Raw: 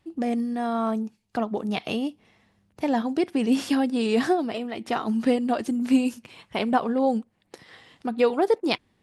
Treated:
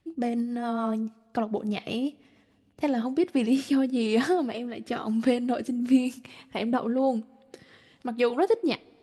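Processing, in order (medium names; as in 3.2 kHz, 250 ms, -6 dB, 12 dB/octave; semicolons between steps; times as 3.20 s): rotary cabinet horn 7 Hz, later 1 Hz, at 2.58 s; two-slope reverb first 0.29 s, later 2.5 s, from -18 dB, DRR 19 dB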